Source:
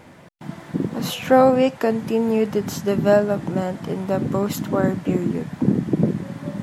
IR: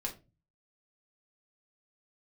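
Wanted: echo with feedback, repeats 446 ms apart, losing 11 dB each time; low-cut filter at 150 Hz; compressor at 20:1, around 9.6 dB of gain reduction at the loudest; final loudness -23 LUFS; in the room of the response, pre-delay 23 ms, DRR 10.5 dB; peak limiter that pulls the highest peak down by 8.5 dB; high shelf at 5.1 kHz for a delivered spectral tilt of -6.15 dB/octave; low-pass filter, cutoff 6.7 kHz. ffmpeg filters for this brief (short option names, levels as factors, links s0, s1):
-filter_complex "[0:a]highpass=150,lowpass=6700,highshelf=f=5100:g=-7.5,acompressor=threshold=0.126:ratio=20,alimiter=limit=0.126:level=0:latency=1,aecho=1:1:446|892|1338:0.282|0.0789|0.0221,asplit=2[s0][s1];[1:a]atrim=start_sample=2205,adelay=23[s2];[s1][s2]afir=irnorm=-1:irlink=0,volume=0.266[s3];[s0][s3]amix=inputs=2:normalize=0,volume=1.58"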